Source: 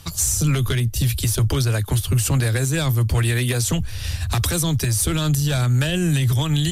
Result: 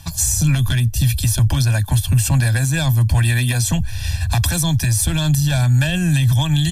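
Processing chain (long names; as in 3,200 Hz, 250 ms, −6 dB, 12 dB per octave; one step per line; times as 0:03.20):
comb filter 1.2 ms, depth 98%
level −1 dB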